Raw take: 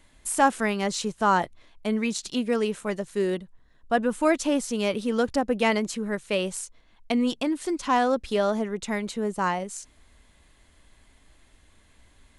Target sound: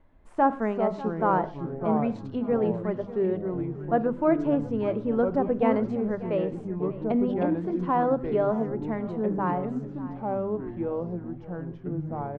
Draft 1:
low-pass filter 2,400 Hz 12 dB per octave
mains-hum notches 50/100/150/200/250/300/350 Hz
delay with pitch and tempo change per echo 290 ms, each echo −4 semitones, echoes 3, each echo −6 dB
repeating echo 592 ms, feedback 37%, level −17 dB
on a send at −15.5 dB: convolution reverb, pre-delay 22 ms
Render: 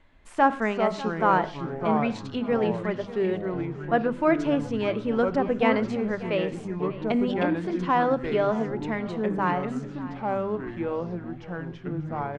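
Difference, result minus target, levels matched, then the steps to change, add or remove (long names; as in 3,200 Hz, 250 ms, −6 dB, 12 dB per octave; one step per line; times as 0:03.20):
2,000 Hz band +8.0 dB
change: low-pass filter 1,000 Hz 12 dB per octave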